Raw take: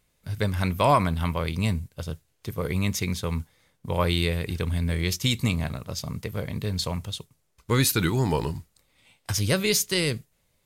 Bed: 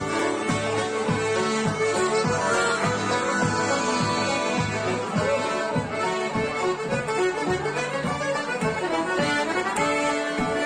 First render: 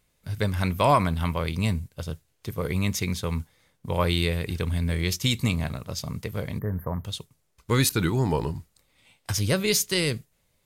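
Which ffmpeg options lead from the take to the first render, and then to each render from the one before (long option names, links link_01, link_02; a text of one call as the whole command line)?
ffmpeg -i in.wav -filter_complex "[0:a]asettb=1/sr,asplit=3[link_01][link_02][link_03];[link_01]atrim=end=6.594[link_04];[link_02]atrim=start=6.59:end=7.05,asetpts=PTS-STARTPTS,afade=type=in:duration=0.004:curve=qsin,afade=type=out:start_time=0.456:duration=0.004:curve=qsin,asuperstop=centerf=5200:order=20:qfactor=0.53[link_05];[link_03]atrim=start=7.046[link_06];[link_04][link_05]acrossfade=duration=0.004:curve1=hsin:curve2=qsin[link_07];[link_07][link_06]acrossfade=duration=0.004:curve1=qsin:curve2=hsin,asettb=1/sr,asplit=3[link_08][link_09][link_10];[link_08]atrim=end=7.894[link_11];[link_09]atrim=start=7.89:end=9.68,asetpts=PTS-STARTPTS,afade=type=in:duration=0.004:curve=qsin,afade=type=out:start_time=1.786:duration=0.004:curve=qsin,adynamicequalizer=threshold=0.00891:dfrequency=1500:dqfactor=0.7:tfrequency=1500:tqfactor=0.7:attack=5:release=100:ratio=0.375:range=3:mode=cutabove:tftype=highshelf[link_12];[link_10]atrim=start=9.676[link_13];[link_11][link_12]acrossfade=duration=0.004:curve1=hsin:curve2=qsin[link_14];[link_14][link_13]acrossfade=duration=0.004:curve1=qsin:curve2=hsin" out.wav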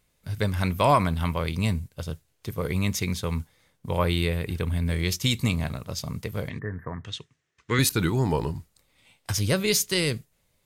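ffmpeg -i in.wav -filter_complex "[0:a]asettb=1/sr,asplit=3[link_01][link_02][link_03];[link_01]atrim=end=3.994[link_04];[link_02]atrim=start=3.99:end=4.86,asetpts=PTS-STARTPTS,afade=type=in:duration=0.004:curve=qsin,afade=type=out:start_time=0.866:duration=0.004:curve=qsin,equalizer=frequency=5500:width=0.93:gain=-5.5[link_05];[link_03]atrim=start=4.856[link_06];[link_04][link_05]acrossfade=duration=0.004:curve1=hsin:curve2=qsin[link_07];[link_07][link_06]acrossfade=duration=0.004:curve1=qsin:curve2=hsin,asettb=1/sr,asplit=3[link_08][link_09][link_10];[link_08]atrim=end=6.494[link_11];[link_09]atrim=start=6.49:end=7.79,asetpts=PTS-STARTPTS,afade=type=in:duration=0.004:curve=qsin,afade=type=out:start_time=1.296:duration=0.004:curve=qsin,highpass=120,equalizer=frequency=190:width_type=q:width=4:gain=-7,equalizer=frequency=570:width_type=q:width=4:gain=-9,equalizer=frequency=860:width_type=q:width=4:gain=-6,equalizer=frequency=1800:width_type=q:width=4:gain=10,equalizer=frequency=2800:width_type=q:width=4:gain=3,equalizer=frequency=4600:width_type=q:width=4:gain=-5,lowpass=frequency=6700:width=0.5412,lowpass=frequency=6700:width=1.3066[link_12];[link_10]atrim=start=7.786[link_13];[link_11][link_12]acrossfade=duration=0.004:curve1=hsin:curve2=qsin[link_14];[link_14][link_13]acrossfade=duration=0.004:curve1=qsin:curve2=hsin" out.wav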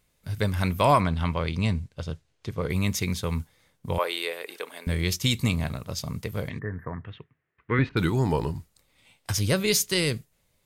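ffmpeg -i in.wav -filter_complex "[0:a]asettb=1/sr,asplit=3[link_01][link_02][link_03];[link_01]atrim=end=1.004[link_04];[link_02]atrim=start=1:end=2.7,asetpts=PTS-STARTPTS,afade=type=in:duration=0.004:curve=qsin,afade=type=out:start_time=1.696:duration=0.004:curve=qsin,lowpass=6000[link_05];[link_03]atrim=start=2.696[link_06];[link_04][link_05]acrossfade=duration=0.004:curve1=hsin:curve2=qsin[link_07];[link_07][link_06]acrossfade=duration=0.004:curve1=qsin:curve2=hsin,asettb=1/sr,asplit=3[link_08][link_09][link_10];[link_08]atrim=end=3.984[link_11];[link_09]atrim=start=3.98:end=4.87,asetpts=PTS-STARTPTS,afade=type=in:duration=0.004:curve=qsin,afade=type=out:start_time=0.886:duration=0.004:curve=qsin,highpass=frequency=430:width=0.5412,highpass=frequency=430:width=1.3066[link_12];[link_10]atrim=start=4.866[link_13];[link_11][link_12]acrossfade=duration=0.004:curve1=hsin:curve2=qsin[link_14];[link_14][link_13]acrossfade=duration=0.004:curve1=qsin:curve2=hsin,asettb=1/sr,asplit=3[link_15][link_16][link_17];[link_15]atrim=end=6.924[link_18];[link_16]atrim=start=6.92:end=7.97,asetpts=PTS-STARTPTS,afade=type=in:duration=0.004:curve=qsin,afade=type=out:start_time=1.046:duration=0.004:curve=qsin,lowpass=frequency=2300:width=0.5412,lowpass=frequency=2300:width=1.3066[link_19];[link_17]atrim=start=7.966[link_20];[link_18][link_19]acrossfade=duration=0.004:curve1=hsin:curve2=qsin[link_21];[link_21][link_20]acrossfade=duration=0.004:curve1=qsin:curve2=hsin" out.wav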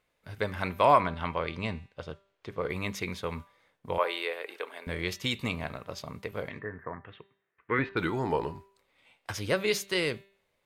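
ffmpeg -i in.wav -af "bass=frequency=250:gain=-13,treble=frequency=4000:gain=-14,bandreject=frequency=196.8:width_type=h:width=4,bandreject=frequency=393.6:width_type=h:width=4,bandreject=frequency=590.4:width_type=h:width=4,bandreject=frequency=787.2:width_type=h:width=4,bandreject=frequency=984:width_type=h:width=4,bandreject=frequency=1180.8:width_type=h:width=4,bandreject=frequency=1377.6:width_type=h:width=4,bandreject=frequency=1574.4:width_type=h:width=4,bandreject=frequency=1771.2:width_type=h:width=4,bandreject=frequency=1968:width_type=h:width=4,bandreject=frequency=2164.8:width_type=h:width=4,bandreject=frequency=2361.6:width_type=h:width=4,bandreject=frequency=2558.4:width_type=h:width=4,bandreject=frequency=2755.2:width_type=h:width=4,bandreject=frequency=2952:width_type=h:width=4,bandreject=frequency=3148.8:width_type=h:width=4,bandreject=frequency=3345.6:width_type=h:width=4,bandreject=frequency=3542.4:width_type=h:width=4,bandreject=frequency=3739.2:width_type=h:width=4,bandreject=frequency=3936:width_type=h:width=4,bandreject=frequency=4132.8:width_type=h:width=4,bandreject=frequency=4329.6:width_type=h:width=4,bandreject=frequency=4526.4:width_type=h:width=4" out.wav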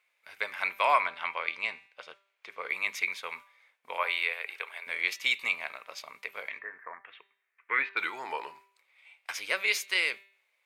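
ffmpeg -i in.wav -af "highpass=910,equalizer=frequency=2300:width_type=o:width=0.38:gain=10" out.wav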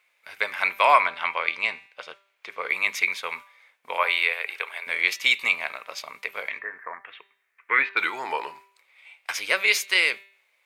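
ffmpeg -i in.wav -af "volume=7dB" out.wav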